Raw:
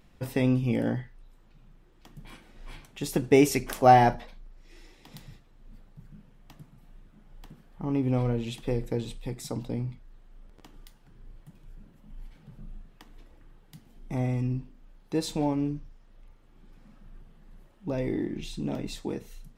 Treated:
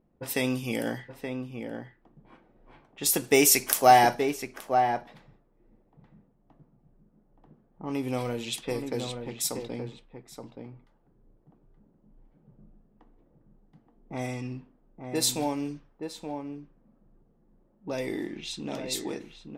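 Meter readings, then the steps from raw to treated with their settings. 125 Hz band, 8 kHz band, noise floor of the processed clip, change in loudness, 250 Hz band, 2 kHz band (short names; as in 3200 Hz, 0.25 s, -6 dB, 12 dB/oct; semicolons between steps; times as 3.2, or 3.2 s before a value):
-8.5 dB, +13.0 dB, -66 dBFS, 0.0 dB, -3.5 dB, +4.5 dB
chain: RIAA curve recording; low-pass opened by the level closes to 410 Hz, open at -29.5 dBFS; in parallel at -11.5 dB: soft clip -16.5 dBFS, distortion -12 dB; on the sum: outdoor echo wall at 150 m, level -6 dB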